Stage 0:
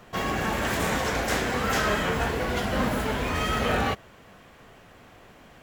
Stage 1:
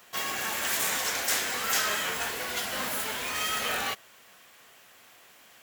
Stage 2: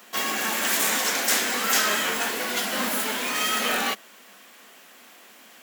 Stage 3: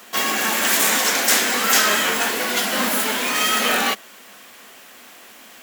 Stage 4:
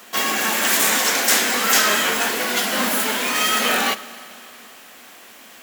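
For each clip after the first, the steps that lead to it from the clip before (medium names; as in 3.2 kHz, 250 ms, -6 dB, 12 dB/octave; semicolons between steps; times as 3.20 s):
tilt EQ +4.5 dB/octave; trim -6 dB
resonant low shelf 160 Hz -11 dB, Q 3; trim +5 dB
word length cut 10-bit, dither triangular; trim +5.5 dB
Schroeder reverb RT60 3.1 s, DRR 16 dB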